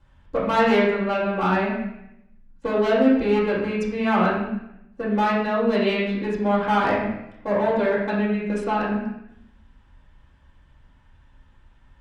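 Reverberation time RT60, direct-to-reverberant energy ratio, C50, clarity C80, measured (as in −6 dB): 0.80 s, −9.5 dB, 1.5 dB, 5.0 dB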